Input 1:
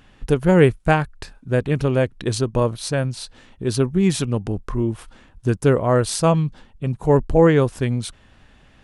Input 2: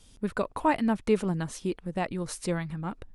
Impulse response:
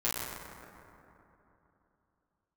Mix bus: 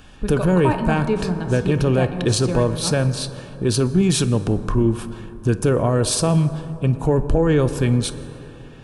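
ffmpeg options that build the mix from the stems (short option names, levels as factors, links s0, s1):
-filter_complex "[0:a]alimiter=limit=0.211:level=0:latency=1:release=38,acrossover=split=410|3000[s0][s1][s2];[s1]acompressor=threshold=0.0562:ratio=6[s3];[s0][s3][s2]amix=inputs=3:normalize=0,volume=0.75,asplit=2[s4][s5];[s5]volume=0.126[s6];[1:a]lowpass=8000,volume=0.447,asplit=2[s7][s8];[s8]volume=0.282[s9];[2:a]atrim=start_sample=2205[s10];[s6][s9]amix=inputs=2:normalize=0[s11];[s11][s10]afir=irnorm=-1:irlink=0[s12];[s4][s7][s12]amix=inputs=3:normalize=0,acontrast=82,asuperstop=centerf=2000:order=8:qfactor=7.6"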